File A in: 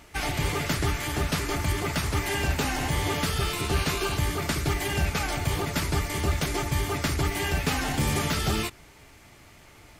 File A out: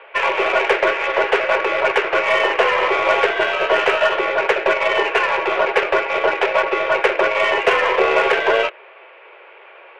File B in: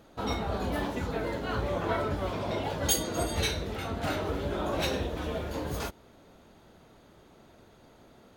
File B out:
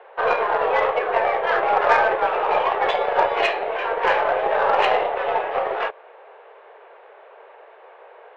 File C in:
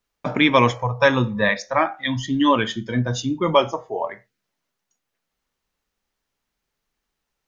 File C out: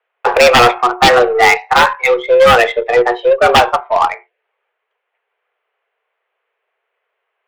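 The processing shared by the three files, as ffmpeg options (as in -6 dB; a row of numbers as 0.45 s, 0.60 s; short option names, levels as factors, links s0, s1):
-af "highpass=f=170:t=q:w=0.5412,highpass=f=170:t=q:w=1.307,lowpass=f=2600:t=q:w=0.5176,lowpass=f=2600:t=q:w=0.7071,lowpass=f=2600:t=q:w=1.932,afreqshift=240,aeval=exprs='0.75*sin(PI/2*3.16*val(0)/0.75)':c=same,aeval=exprs='0.794*(cos(1*acos(clip(val(0)/0.794,-1,1)))-cos(1*PI/2))+0.0316*(cos(4*acos(clip(val(0)/0.794,-1,1)))-cos(4*PI/2))+0.0398*(cos(5*acos(clip(val(0)/0.794,-1,1)))-cos(5*PI/2))+0.0282*(cos(6*acos(clip(val(0)/0.794,-1,1)))-cos(6*PI/2))+0.0562*(cos(7*acos(clip(val(0)/0.794,-1,1)))-cos(7*PI/2))':c=same"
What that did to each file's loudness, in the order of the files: +10.5 LU, +11.0 LU, +10.0 LU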